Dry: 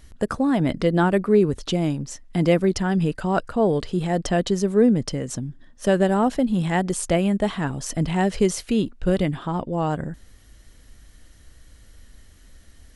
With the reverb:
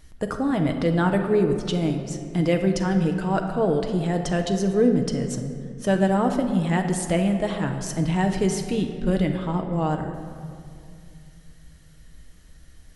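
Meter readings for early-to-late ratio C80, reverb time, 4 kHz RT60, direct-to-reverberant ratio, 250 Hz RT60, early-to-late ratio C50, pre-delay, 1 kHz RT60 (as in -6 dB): 8.5 dB, 2.4 s, 1.3 s, 4.0 dB, 3.2 s, 7.0 dB, 6 ms, 2.2 s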